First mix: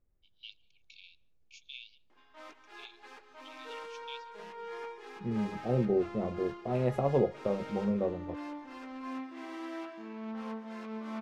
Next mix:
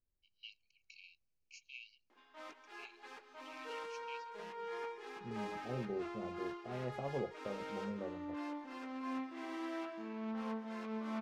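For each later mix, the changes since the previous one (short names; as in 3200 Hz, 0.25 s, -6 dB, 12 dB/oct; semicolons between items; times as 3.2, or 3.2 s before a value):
first voice: add Butterworth band-stop 3500 Hz, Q 3.4; second voice -12.0 dB; reverb: off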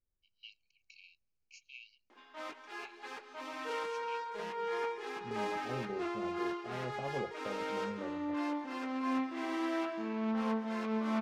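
background +7.5 dB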